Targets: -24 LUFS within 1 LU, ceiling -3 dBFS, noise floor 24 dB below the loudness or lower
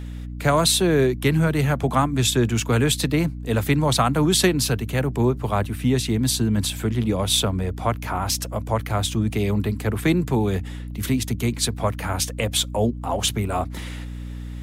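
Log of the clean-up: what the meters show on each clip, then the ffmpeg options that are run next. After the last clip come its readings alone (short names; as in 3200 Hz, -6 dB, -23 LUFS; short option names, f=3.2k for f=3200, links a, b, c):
hum 60 Hz; harmonics up to 300 Hz; hum level -30 dBFS; loudness -22.0 LUFS; peak -5.0 dBFS; loudness target -24.0 LUFS
-> -af "bandreject=f=60:t=h:w=6,bandreject=f=120:t=h:w=6,bandreject=f=180:t=h:w=6,bandreject=f=240:t=h:w=6,bandreject=f=300:t=h:w=6"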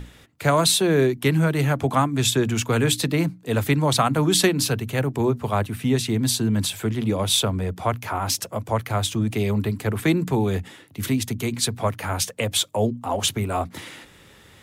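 hum none; loudness -22.5 LUFS; peak -5.0 dBFS; loudness target -24.0 LUFS
-> -af "volume=-1.5dB"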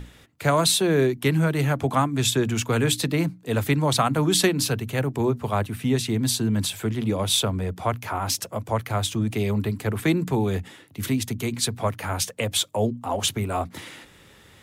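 loudness -24.0 LUFS; peak -6.5 dBFS; noise floor -52 dBFS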